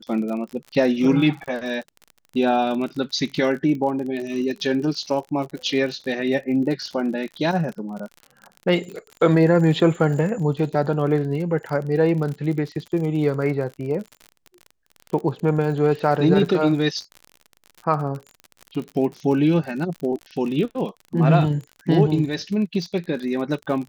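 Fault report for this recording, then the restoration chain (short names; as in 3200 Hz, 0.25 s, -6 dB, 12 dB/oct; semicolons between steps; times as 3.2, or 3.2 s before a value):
crackle 47/s -30 dBFS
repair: de-click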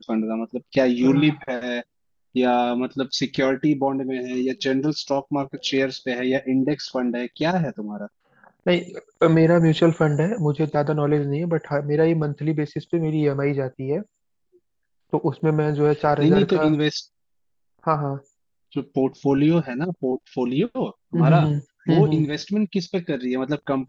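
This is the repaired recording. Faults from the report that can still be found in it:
none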